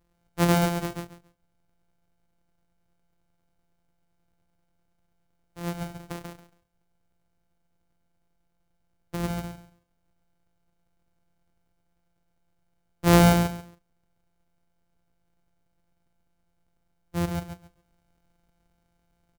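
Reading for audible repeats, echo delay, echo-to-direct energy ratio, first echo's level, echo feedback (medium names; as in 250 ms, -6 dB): 3, 138 ms, -4.5 dB, -4.5 dB, 21%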